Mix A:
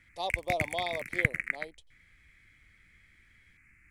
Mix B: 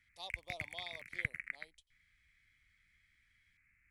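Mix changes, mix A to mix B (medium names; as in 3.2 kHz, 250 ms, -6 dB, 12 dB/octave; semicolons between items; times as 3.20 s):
background: add tone controls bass +1 dB, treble -10 dB; master: add amplifier tone stack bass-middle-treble 5-5-5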